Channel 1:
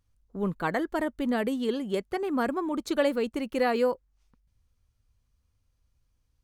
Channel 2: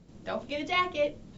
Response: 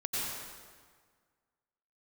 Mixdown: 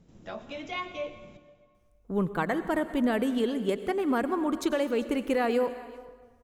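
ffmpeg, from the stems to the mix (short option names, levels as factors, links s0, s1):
-filter_complex "[0:a]alimiter=limit=0.112:level=0:latency=1:release=317,adelay=1750,volume=1.19,asplit=3[s0][s1][s2];[s1]volume=0.158[s3];[s2]volume=0.1[s4];[1:a]acompressor=threshold=0.0178:ratio=1.5,volume=0.596,asplit=2[s5][s6];[s6]volume=0.188[s7];[2:a]atrim=start_sample=2205[s8];[s3][s7]amix=inputs=2:normalize=0[s9];[s9][s8]afir=irnorm=-1:irlink=0[s10];[s4]aecho=0:1:396:1[s11];[s0][s5][s10][s11]amix=inputs=4:normalize=0,equalizer=f=4400:w=8:g=-7.5"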